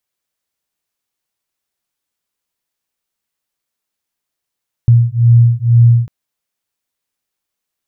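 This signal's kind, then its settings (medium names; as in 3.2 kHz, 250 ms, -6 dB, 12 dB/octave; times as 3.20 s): beating tones 117 Hz, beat 2.1 Hz, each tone -9 dBFS 1.20 s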